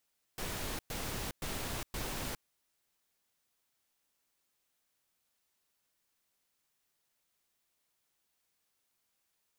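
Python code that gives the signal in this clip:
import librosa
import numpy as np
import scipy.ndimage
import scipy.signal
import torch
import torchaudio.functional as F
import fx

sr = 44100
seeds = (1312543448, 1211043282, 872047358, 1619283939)

y = fx.noise_burst(sr, seeds[0], colour='pink', on_s=0.41, off_s=0.11, bursts=4, level_db=-38.5)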